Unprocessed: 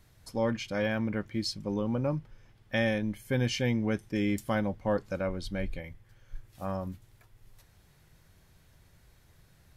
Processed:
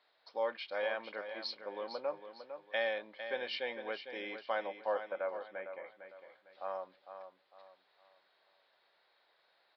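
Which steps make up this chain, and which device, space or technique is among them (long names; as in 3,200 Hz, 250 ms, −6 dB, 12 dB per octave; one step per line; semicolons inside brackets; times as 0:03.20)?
0:04.67–0:05.89: low-pass filter 2,200 Hz 24 dB per octave
RIAA equalisation playback
repeating echo 454 ms, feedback 34%, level −9.5 dB
musical greeting card (downsampling to 11,025 Hz; high-pass filter 580 Hz 24 dB per octave; parametric band 3,900 Hz +8.5 dB 0.47 octaves)
level −2.5 dB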